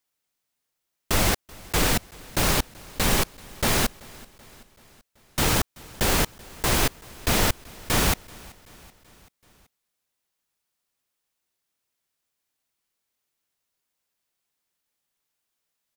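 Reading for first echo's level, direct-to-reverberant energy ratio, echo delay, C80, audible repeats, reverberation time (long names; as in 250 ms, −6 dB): −23.0 dB, no reverb audible, 382 ms, no reverb audible, 3, no reverb audible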